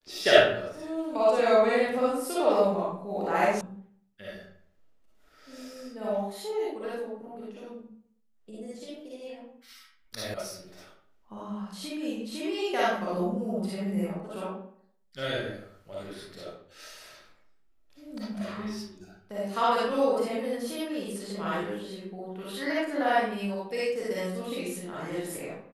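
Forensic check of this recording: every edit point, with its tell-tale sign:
3.61 sound cut off
10.34 sound cut off

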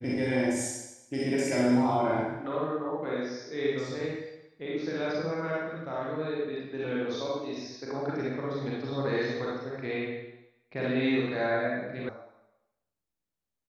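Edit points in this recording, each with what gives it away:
12.09 sound cut off

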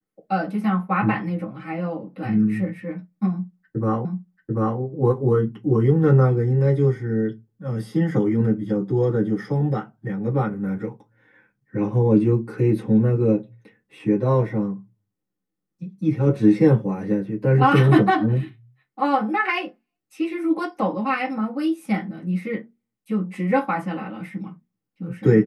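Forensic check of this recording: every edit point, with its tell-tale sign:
4.05 repeat of the last 0.74 s

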